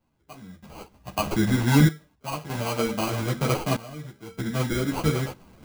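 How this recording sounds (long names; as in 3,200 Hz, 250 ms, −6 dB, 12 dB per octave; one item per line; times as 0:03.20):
aliases and images of a low sample rate 1,800 Hz, jitter 0%
sample-and-hold tremolo 1.6 Hz, depth 95%
a shimmering, thickened sound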